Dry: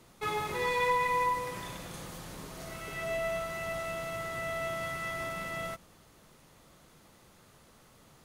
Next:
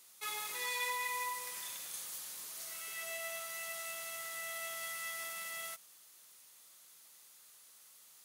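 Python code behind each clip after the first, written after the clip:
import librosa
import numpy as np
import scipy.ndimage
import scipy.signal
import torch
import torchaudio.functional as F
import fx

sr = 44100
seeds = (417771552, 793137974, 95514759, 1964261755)

y = np.diff(x, prepend=0.0)
y = y * librosa.db_to_amplitude(5.5)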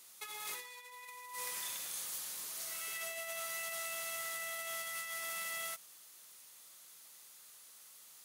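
y = fx.over_compress(x, sr, threshold_db=-43.0, ratio=-0.5)
y = y * librosa.db_to_amplitude(1.0)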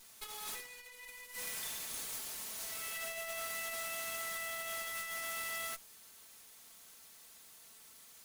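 y = fx.lower_of_two(x, sr, delay_ms=4.5)
y = y * librosa.db_to_amplitude(1.5)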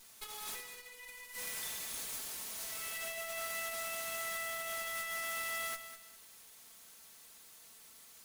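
y = fx.echo_feedback(x, sr, ms=201, feedback_pct=29, wet_db=-11.0)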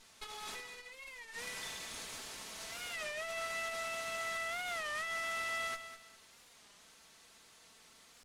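y = fx.air_absorb(x, sr, metres=70.0)
y = fx.record_warp(y, sr, rpm=33.33, depth_cents=160.0)
y = y * librosa.db_to_amplitude(2.5)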